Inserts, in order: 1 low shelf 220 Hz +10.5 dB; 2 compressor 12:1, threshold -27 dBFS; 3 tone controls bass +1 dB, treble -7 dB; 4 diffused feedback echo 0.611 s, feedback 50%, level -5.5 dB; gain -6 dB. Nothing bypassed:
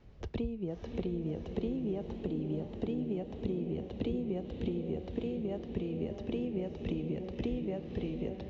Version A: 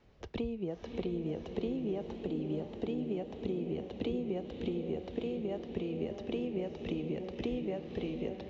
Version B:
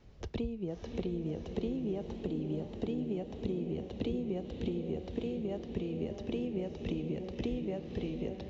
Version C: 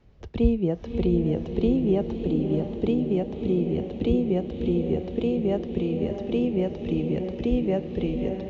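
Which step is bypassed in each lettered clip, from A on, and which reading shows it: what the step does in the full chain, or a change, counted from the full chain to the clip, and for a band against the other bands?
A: 1, 125 Hz band -5.5 dB; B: 3, 4 kHz band +2.5 dB; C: 2, mean gain reduction 9.0 dB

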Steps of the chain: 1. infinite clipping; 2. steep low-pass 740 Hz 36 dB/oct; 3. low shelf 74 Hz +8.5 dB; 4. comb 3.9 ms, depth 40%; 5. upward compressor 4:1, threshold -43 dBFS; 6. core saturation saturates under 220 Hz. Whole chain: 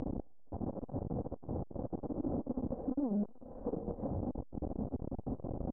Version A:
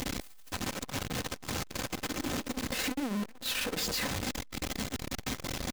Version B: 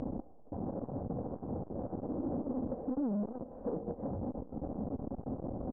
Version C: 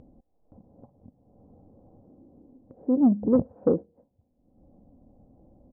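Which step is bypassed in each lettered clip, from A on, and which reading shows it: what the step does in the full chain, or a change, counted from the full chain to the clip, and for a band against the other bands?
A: 2, 1 kHz band +7.5 dB; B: 3, 125 Hz band -2.5 dB; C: 1, crest factor change +6.5 dB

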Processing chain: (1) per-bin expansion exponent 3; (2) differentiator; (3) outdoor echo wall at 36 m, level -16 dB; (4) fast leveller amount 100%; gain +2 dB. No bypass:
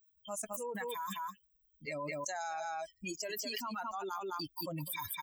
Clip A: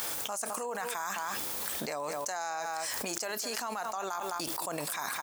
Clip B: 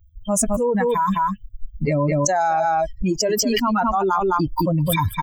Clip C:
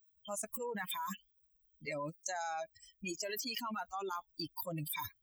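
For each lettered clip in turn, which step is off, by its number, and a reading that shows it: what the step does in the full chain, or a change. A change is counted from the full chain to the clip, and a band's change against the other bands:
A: 1, 125 Hz band -7.5 dB; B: 2, 125 Hz band +7.5 dB; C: 3, 1 kHz band -1.5 dB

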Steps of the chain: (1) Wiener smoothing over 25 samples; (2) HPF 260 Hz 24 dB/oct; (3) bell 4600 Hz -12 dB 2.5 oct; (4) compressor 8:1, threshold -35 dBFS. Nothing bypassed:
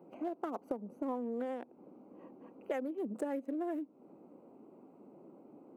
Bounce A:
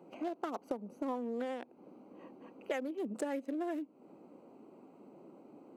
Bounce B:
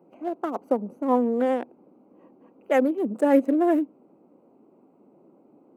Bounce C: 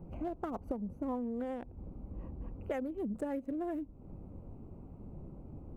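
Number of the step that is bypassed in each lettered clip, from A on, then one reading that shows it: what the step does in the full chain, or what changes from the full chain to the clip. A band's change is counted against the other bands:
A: 3, 2 kHz band +4.5 dB; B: 4, mean gain reduction 11.0 dB; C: 2, 250 Hz band +2.0 dB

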